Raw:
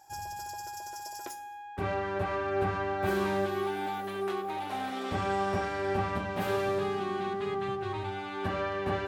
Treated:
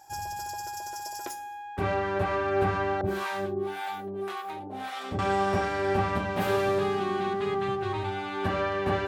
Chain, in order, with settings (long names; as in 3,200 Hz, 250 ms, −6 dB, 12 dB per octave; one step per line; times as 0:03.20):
0:03.01–0:05.19: two-band tremolo in antiphase 1.8 Hz, depth 100%, crossover 630 Hz
level +4 dB